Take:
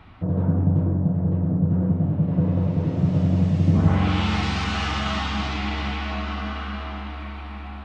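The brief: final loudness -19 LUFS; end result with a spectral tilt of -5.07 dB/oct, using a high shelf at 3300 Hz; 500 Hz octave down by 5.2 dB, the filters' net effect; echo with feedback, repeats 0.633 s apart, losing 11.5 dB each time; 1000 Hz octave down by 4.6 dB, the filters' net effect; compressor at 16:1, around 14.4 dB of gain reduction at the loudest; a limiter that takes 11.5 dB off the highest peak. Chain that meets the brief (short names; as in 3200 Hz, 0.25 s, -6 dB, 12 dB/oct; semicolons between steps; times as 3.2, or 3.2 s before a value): bell 500 Hz -5.5 dB; bell 1000 Hz -5 dB; high shelf 3300 Hz +5 dB; compressor 16:1, threshold -28 dBFS; limiter -32 dBFS; feedback echo 0.633 s, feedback 27%, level -11.5 dB; gain +20.5 dB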